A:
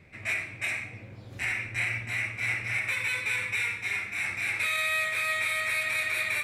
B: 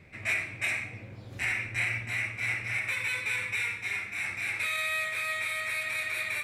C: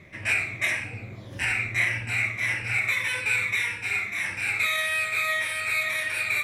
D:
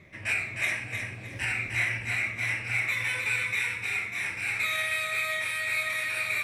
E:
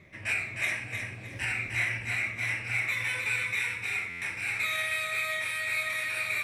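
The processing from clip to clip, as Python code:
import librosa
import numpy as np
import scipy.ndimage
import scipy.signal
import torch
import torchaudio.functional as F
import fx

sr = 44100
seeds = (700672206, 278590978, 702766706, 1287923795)

y1 = fx.rider(x, sr, range_db=10, speed_s=2.0)
y1 = F.gain(torch.from_numpy(y1), -2.0).numpy()
y2 = fx.spec_ripple(y1, sr, per_octave=1.2, drift_hz=-1.7, depth_db=8)
y2 = F.gain(torch.from_numpy(y2), 4.5).numpy()
y3 = fx.echo_feedback(y2, sr, ms=308, feedback_pct=30, wet_db=-5.5)
y3 = F.gain(torch.from_numpy(y3), -4.0).numpy()
y4 = fx.buffer_glitch(y3, sr, at_s=(4.09,), block=512, repeats=10)
y4 = F.gain(torch.from_numpy(y4), -1.5).numpy()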